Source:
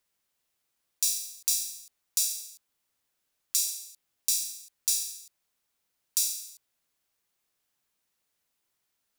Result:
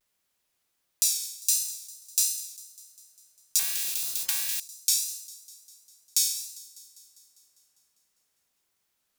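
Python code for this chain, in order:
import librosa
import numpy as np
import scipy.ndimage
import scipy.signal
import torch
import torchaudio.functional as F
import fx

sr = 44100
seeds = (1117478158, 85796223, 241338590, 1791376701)

p1 = fx.vibrato(x, sr, rate_hz=1.4, depth_cents=99.0)
p2 = p1 + fx.echo_wet_highpass(p1, sr, ms=200, feedback_pct=65, hz=3500.0, wet_db=-18.5, dry=0)
p3 = fx.spectral_comp(p2, sr, ratio=10.0, at=(3.59, 4.6))
y = p3 * 10.0 ** (2.5 / 20.0)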